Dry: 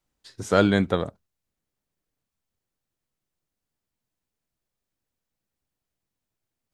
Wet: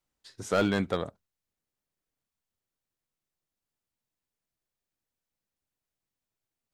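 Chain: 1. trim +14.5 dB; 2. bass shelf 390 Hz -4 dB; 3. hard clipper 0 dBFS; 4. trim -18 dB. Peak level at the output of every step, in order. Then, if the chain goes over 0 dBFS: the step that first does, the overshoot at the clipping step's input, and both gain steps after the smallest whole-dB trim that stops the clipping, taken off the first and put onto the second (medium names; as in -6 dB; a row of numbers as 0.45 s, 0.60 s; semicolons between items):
+9.0 dBFS, +9.0 dBFS, 0.0 dBFS, -18.0 dBFS; step 1, 9.0 dB; step 1 +5.5 dB, step 4 -9 dB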